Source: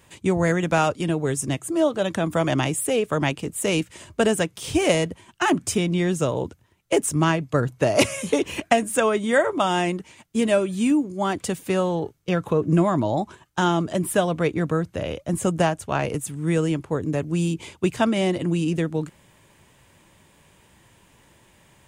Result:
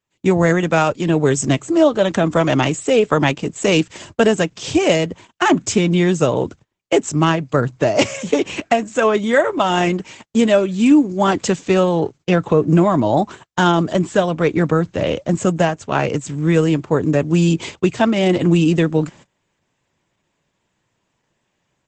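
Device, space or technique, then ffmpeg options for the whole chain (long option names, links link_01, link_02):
video call: -af "highpass=110,dynaudnorm=framelen=130:gausssize=3:maxgain=13.5dB,agate=range=-24dB:threshold=-37dB:ratio=16:detection=peak,volume=-1.5dB" -ar 48000 -c:a libopus -b:a 12k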